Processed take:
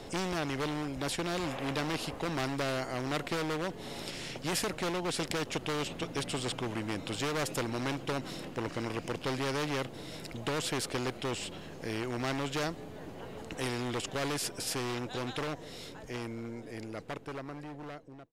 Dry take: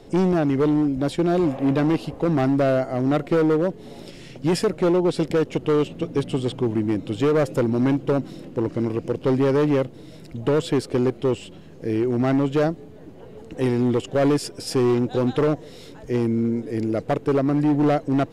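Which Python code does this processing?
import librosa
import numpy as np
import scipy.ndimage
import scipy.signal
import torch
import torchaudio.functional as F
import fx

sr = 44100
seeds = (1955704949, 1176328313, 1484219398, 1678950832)

y = fx.fade_out_tail(x, sr, length_s=5.03)
y = fx.spectral_comp(y, sr, ratio=2.0)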